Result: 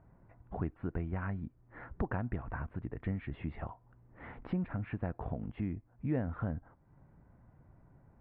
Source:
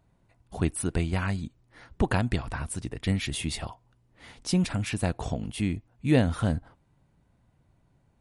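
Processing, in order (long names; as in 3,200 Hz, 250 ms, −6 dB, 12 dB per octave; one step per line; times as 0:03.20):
inverse Chebyshev low-pass filter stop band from 5,800 Hz, stop band 60 dB
downward compressor 2 to 1, threshold −48 dBFS, peak gain reduction 17.5 dB
level +4.5 dB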